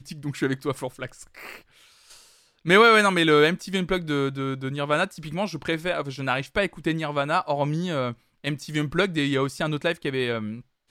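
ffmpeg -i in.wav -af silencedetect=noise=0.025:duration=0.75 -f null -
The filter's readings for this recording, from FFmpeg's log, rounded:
silence_start: 1.56
silence_end: 2.66 | silence_duration: 1.09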